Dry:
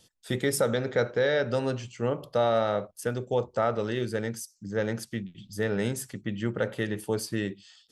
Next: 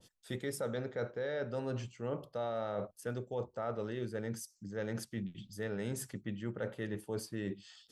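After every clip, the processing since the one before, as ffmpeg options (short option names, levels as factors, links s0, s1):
-af "areverse,acompressor=threshold=0.0158:ratio=4,areverse,adynamicequalizer=threshold=0.00158:dfrequency=1800:dqfactor=0.7:tfrequency=1800:tqfactor=0.7:attack=5:release=100:ratio=0.375:range=3:mode=cutabove:tftype=highshelf"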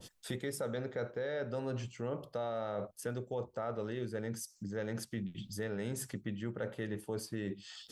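-af "acompressor=threshold=0.002:ratio=2,volume=3.35"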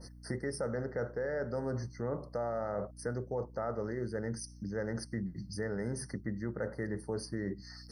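-af "aeval=exprs='val(0)+0.00224*(sin(2*PI*60*n/s)+sin(2*PI*2*60*n/s)/2+sin(2*PI*3*60*n/s)/3+sin(2*PI*4*60*n/s)/4+sin(2*PI*5*60*n/s)/5)':c=same,afftfilt=real='re*eq(mod(floor(b*sr/1024/2100),2),0)':imag='im*eq(mod(floor(b*sr/1024/2100),2),0)':win_size=1024:overlap=0.75,volume=1.26"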